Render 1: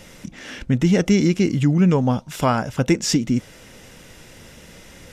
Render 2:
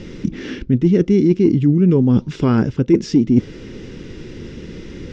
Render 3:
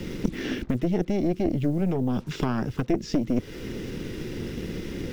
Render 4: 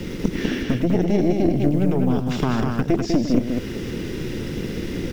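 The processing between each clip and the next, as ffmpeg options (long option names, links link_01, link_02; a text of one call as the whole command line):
ffmpeg -i in.wav -af "lowpass=frequency=5400:width=0.5412,lowpass=frequency=5400:width=1.3066,lowshelf=frequency=500:width_type=q:width=3:gain=9,areverse,acompressor=threshold=-13dB:ratio=10,areverse,volume=3dB" out.wav
ffmpeg -i in.wav -filter_complex "[0:a]acrusher=bits=7:mix=0:aa=0.5,acrossover=split=100|390[link_01][link_02][link_03];[link_01]acompressor=threshold=-37dB:ratio=4[link_04];[link_02]acompressor=threshold=-27dB:ratio=4[link_05];[link_03]acompressor=threshold=-32dB:ratio=4[link_06];[link_04][link_05][link_06]amix=inputs=3:normalize=0,aeval=exprs='0.237*(cos(1*acos(clip(val(0)/0.237,-1,1)))-cos(1*PI/2))+0.0668*(cos(4*acos(clip(val(0)/0.237,-1,1)))-cos(4*PI/2))+0.0211*(cos(6*acos(clip(val(0)/0.237,-1,1)))-cos(6*PI/2))':channel_layout=same" out.wav
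ffmpeg -i in.wav -af "aecho=1:1:102|198.3:0.316|0.631,volume=4dB" out.wav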